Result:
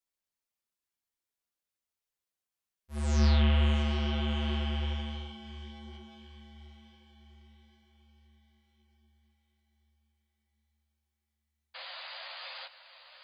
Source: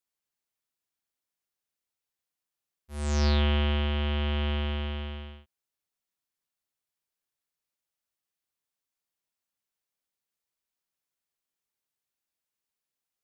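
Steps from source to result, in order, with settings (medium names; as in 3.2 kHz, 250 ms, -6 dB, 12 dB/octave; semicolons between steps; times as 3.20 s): painted sound noise, 11.74–12.67 s, 510–4900 Hz -41 dBFS; echo that smears into a reverb 719 ms, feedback 54%, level -12 dB; chorus voices 6, 1.4 Hz, delay 12 ms, depth 3.1 ms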